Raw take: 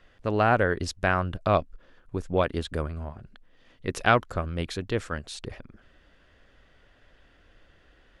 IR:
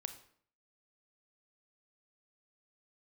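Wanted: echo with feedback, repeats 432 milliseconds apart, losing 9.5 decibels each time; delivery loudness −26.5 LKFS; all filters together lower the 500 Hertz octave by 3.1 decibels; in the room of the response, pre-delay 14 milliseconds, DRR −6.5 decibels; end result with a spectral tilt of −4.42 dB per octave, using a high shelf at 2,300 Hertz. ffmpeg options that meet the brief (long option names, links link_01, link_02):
-filter_complex "[0:a]equalizer=frequency=500:width_type=o:gain=-4.5,highshelf=frequency=2300:gain=6.5,aecho=1:1:432|864|1296|1728:0.335|0.111|0.0365|0.012,asplit=2[link_01][link_02];[1:a]atrim=start_sample=2205,adelay=14[link_03];[link_02][link_03]afir=irnorm=-1:irlink=0,volume=9dB[link_04];[link_01][link_04]amix=inputs=2:normalize=0,volume=-6.5dB"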